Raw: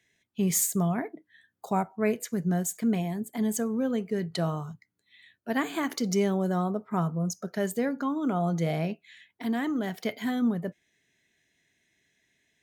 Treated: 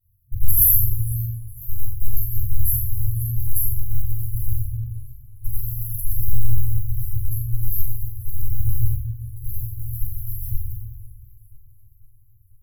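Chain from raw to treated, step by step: local time reversal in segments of 80 ms; in parallel at -10.5 dB: wrapped overs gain 22 dB; on the sum: shoebox room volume 260 m³, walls mixed, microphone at 6.2 m; FFT band-reject 120–11000 Hz; on a send: flutter echo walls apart 7.5 m, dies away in 0.41 s; on the sum: warbling echo 0.498 s, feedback 57%, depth 183 cents, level -19 dB; gain +4.5 dB

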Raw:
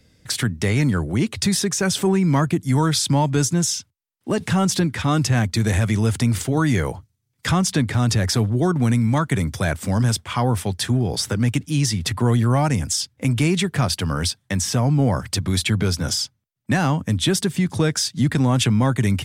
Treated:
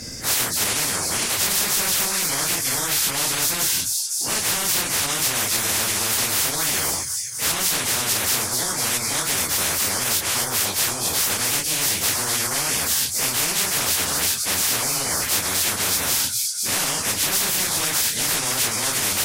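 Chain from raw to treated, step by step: phase scrambler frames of 0.1 s; limiter -12.5 dBFS, peak gain reduction 6.5 dB; resonant high shelf 4400 Hz +7 dB, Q 3; thin delay 0.25 s, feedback 57%, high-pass 4700 Hz, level -14 dB; spectral compressor 10:1; gain -6.5 dB

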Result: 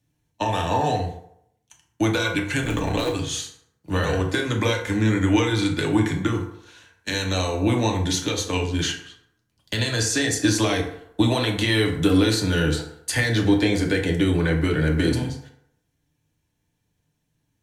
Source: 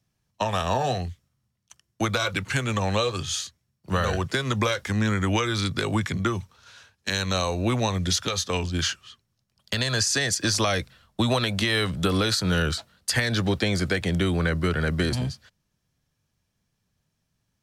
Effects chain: 2.62–3.13 cycle switcher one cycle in 3, muted; thirty-one-band EQ 315 Hz +6 dB, 630 Hz -3 dB, 1250 Hz -8 dB, 5000 Hz -8 dB; FDN reverb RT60 0.73 s, low-frequency decay 0.75×, high-frequency decay 0.55×, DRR 0.5 dB

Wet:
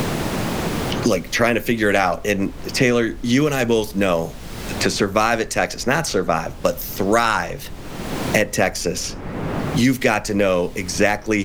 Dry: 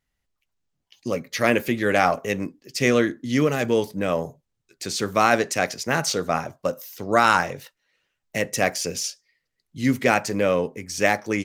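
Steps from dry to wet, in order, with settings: added noise brown -39 dBFS; three-band squash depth 100%; gain +3 dB

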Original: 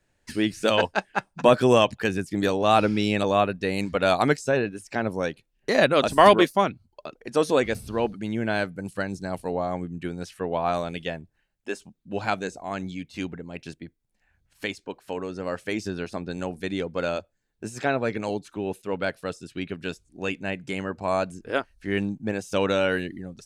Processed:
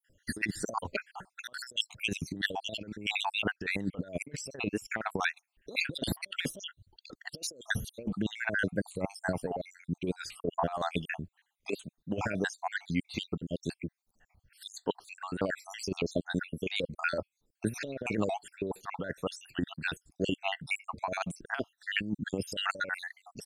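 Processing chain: random spectral dropouts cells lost 65%; 2.34–4.46 high shelf 4800 Hz -5.5 dB; negative-ratio compressor -32 dBFS, ratio -0.5; record warp 45 rpm, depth 100 cents

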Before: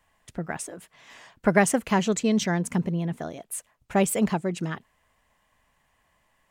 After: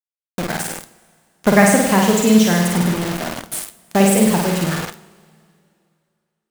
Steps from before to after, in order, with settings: flutter echo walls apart 8.7 m, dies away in 1 s; bit-crush 5-bit; two-slope reverb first 0.4 s, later 2.5 s, from -18 dB, DRR 10.5 dB; gain +5.5 dB

